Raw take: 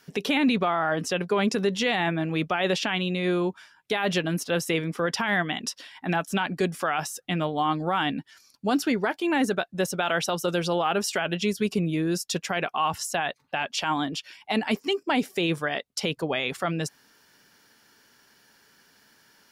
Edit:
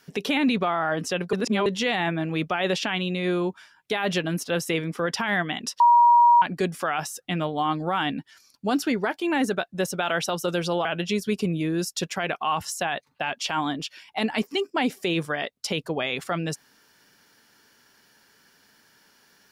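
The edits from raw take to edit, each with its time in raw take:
1.33–1.66 s: reverse
5.80–6.42 s: bleep 953 Hz -12 dBFS
10.85–11.18 s: delete

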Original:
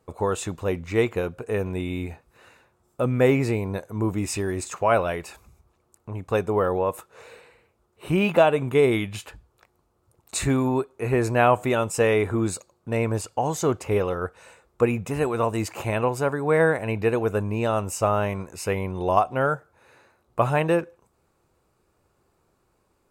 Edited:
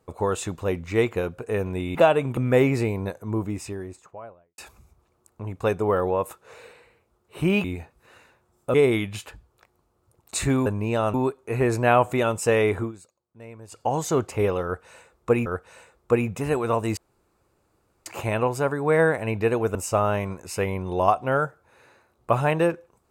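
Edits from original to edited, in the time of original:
1.95–3.05 s: swap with 8.32–8.74 s
3.59–5.26 s: studio fade out
12.31–13.33 s: dip -18.5 dB, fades 0.13 s
14.16–14.98 s: loop, 2 plays
15.67 s: insert room tone 1.09 s
17.36–17.84 s: move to 10.66 s

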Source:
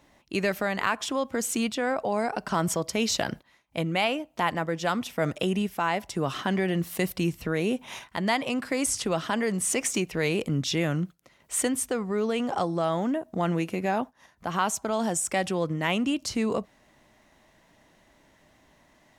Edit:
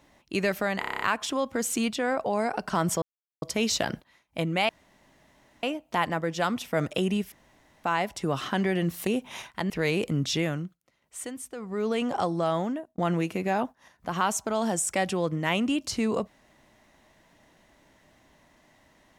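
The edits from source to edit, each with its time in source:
0.80 s: stutter 0.03 s, 8 plays
2.81 s: insert silence 0.40 s
4.08 s: insert room tone 0.94 s
5.77 s: insert room tone 0.52 s
7.00–7.64 s: delete
8.27–10.08 s: delete
10.75–12.29 s: dip -11 dB, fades 0.36 s
12.96–13.36 s: fade out

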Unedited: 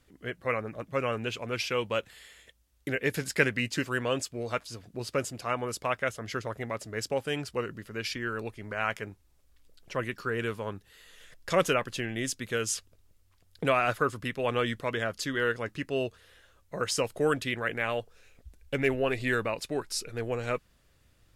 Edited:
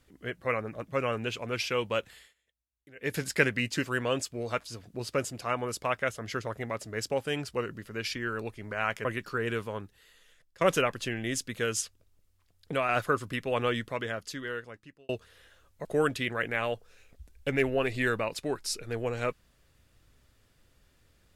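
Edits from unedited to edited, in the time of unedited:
2.14–3.15 s: dip -22.5 dB, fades 0.20 s
9.05–9.97 s: delete
10.55–11.53 s: fade out, to -22 dB
12.73–13.81 s: gain -4 dB
14.55–16.01 s: fade out
16.77–17.11 s: delete

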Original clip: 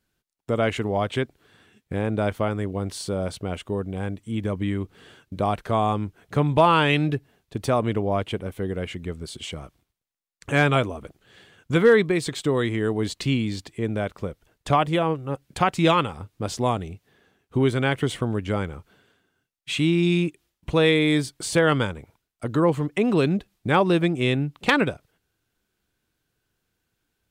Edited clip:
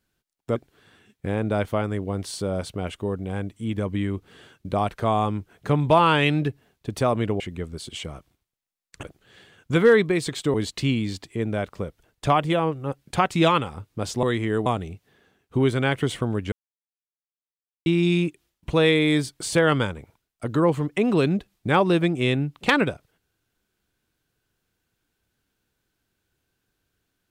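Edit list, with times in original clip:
0.56–1.23 s: delete
8.07–8.88 s: delete
10.51–11.03 s: delete
12.54–12.97 s: move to 16.66 s
18.52–19.86 s: mute

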